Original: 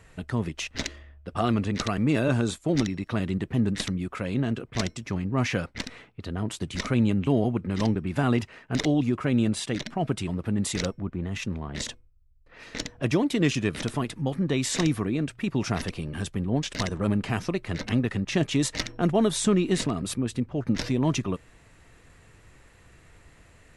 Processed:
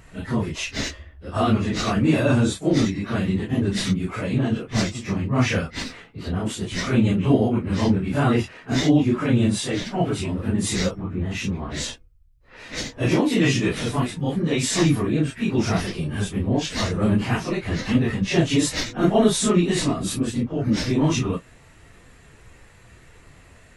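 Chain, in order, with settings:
random phases in long frames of 100 ms
0:13.06–0:13.75: double-tracking delay 16 ms −7 dB
level +5 dB

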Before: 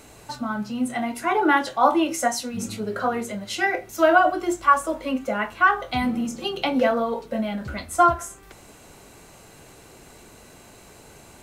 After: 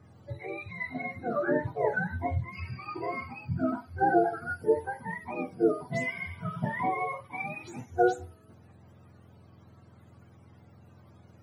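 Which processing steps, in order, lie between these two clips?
frequency axis turned over on the octave scale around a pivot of 710 Hz
harmonic and percussive parts rebalanced percussive −4 dB
one half of a high-frequency compander decoder only
level −6 dB

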